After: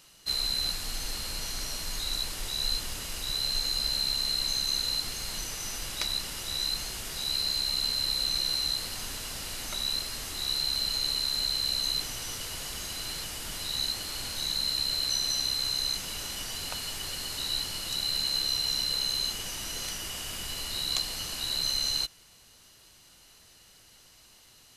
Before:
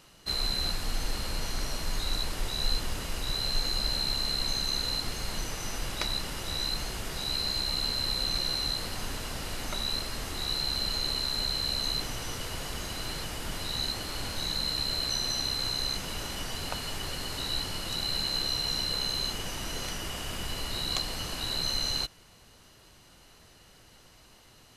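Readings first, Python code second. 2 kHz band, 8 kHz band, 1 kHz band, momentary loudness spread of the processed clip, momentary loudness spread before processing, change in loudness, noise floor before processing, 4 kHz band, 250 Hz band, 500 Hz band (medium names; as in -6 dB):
-2.0 dB, +4.0 dB, -4.5 dB, 8 LU, 7 LU, +1.5 dB, -56 dBFS, +2.0 dB, -6.5 dB, -6.0 dB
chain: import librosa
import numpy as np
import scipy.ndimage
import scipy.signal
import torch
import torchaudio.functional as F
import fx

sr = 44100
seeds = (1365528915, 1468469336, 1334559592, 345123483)

y = fx.high_shelf(x, sr, hz=2400.0, db=11.5)
y = y * 10.0 ** (-6.5 / 20.0)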